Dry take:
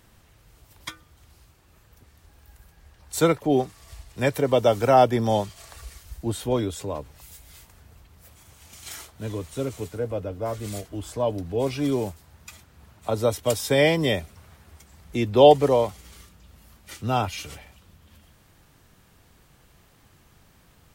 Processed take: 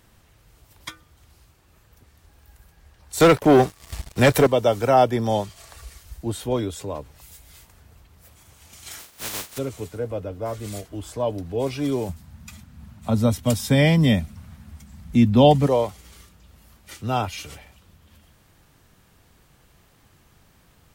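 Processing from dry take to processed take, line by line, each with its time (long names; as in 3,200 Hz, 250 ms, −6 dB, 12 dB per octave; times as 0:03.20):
0:03.20–0:04.47: leveller curve on the samples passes 3
0:08.98–0:09.57: compressing power law on the bin magnitudes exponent 0.18
0:12.09–0:15.67: low shelf with overshoot 290 Hz +7.5 dB, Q 3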